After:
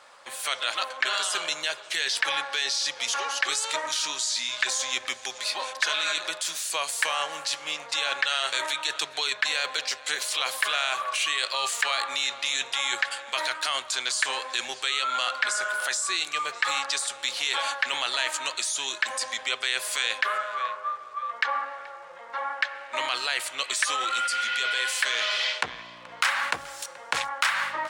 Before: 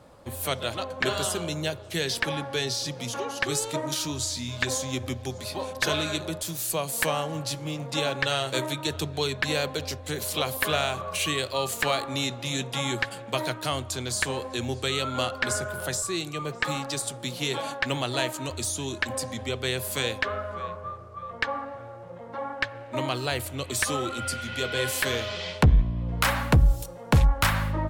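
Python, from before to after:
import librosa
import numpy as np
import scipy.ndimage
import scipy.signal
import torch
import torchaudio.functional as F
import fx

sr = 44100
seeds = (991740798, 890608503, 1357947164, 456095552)

p1 = scipy.signal.sosfilt(scipy.signal.butter(2, 1200.0, 'highpass', fs=sr, output='sos'), x)
p2 = fx.peak_eq(p1, sr, hz=1700.0, db=3.0, octaves=1.2)
p3 = fx.over_compress(p2, sr, threshold_db=-34.0, ratio=-0.5)
p4 = p2 + (p3 * 10.0 ** (0.0 / 20.0))
p5 = fx.dmg_crackle(p4, sr, seeds[0], per_s=190.0, level_db=-49.0)
p6 = scipy.signal.savgol_filter(p5, 9, 4, mode='constant')
y = p6 + fx.echo_single(p6, sr, ms=429, db=-22.5, dry=0)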